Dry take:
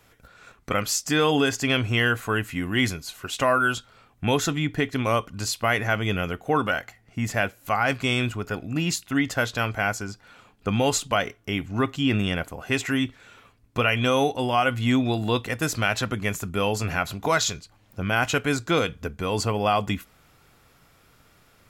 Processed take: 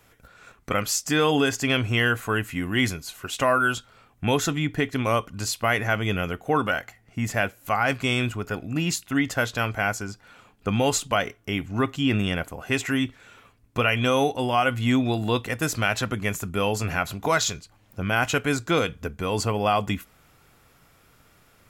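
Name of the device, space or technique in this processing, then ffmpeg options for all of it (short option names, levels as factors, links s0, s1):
exciter from parts: -filter_complex "[0:a]asplit=2[s0][s1];[s1]highpass=f=3900:w=0.5412,highpass=f=3900:w=1.3066,asoftclip=type=tanh:threshold=0.0501,volume=0.237[s2];[s0][s2]amix=inputs=2:normalize=0"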